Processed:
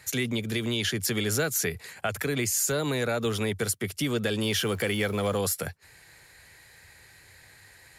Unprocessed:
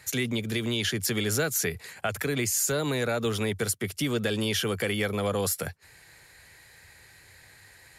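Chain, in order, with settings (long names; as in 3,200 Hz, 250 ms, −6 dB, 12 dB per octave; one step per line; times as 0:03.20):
0:04.44–0:05.38: converter with a step at zero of −42 dBFS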